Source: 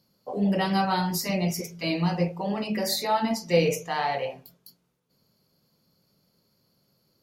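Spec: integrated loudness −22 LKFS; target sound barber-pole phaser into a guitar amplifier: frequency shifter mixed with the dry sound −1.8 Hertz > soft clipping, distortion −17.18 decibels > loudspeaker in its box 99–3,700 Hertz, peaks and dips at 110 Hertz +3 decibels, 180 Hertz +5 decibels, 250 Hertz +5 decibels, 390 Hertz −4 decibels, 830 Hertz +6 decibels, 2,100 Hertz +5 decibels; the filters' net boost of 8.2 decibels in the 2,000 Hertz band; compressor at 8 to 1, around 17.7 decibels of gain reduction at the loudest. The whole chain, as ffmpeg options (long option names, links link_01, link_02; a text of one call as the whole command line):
ffmpeg -i in.wav -filter_complex "[0:a]equalizer=frequency=2000:width_type=o:gain=6.5,acompressor=threshold=-34dB:ratio=8,asplit=2[link_01][link_02];[link_02]afreqshift=-1.8[link_03];[link_01][link_03]amix=inputs=2:normalize=1,asoftclip=threshold=-34dB,highpass=99,equalizer=frequency=110:width_type=q:width=4:gain=3,equalizer=frequency=180:width_type=q:width=4:gain=5,equalizer=frequency=250:width_type=q:width=4:gain=5,equalizer=frequency=390:width_type=q:width=4:gain=-4,equalizer=frequency=830:width_type=q:width=4:gain=6,equalizer=frequency=2100:width_type=q:width=4:gain=5,lowpass=frequency=3700:width=0.5412,lowpass=frequency=3700:width=1.3066,volume=17.5dB" out.wav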